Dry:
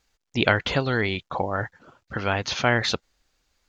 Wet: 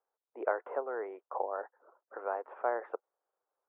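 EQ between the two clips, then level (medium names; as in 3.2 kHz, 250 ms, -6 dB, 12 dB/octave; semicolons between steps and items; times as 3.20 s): steep high-pass 410 Hz 36 dB/octave; inverse Chebyshev low-pass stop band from 3.9 kHz, stop band 60 dB; distance through air 110 m; -6.5 dB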